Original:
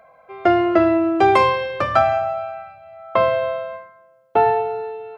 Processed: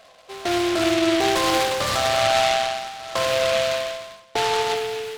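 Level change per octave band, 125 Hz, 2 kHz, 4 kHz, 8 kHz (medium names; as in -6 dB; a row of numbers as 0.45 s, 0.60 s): -2.5 dB, +1.5 dB, +12.0 dB, no reading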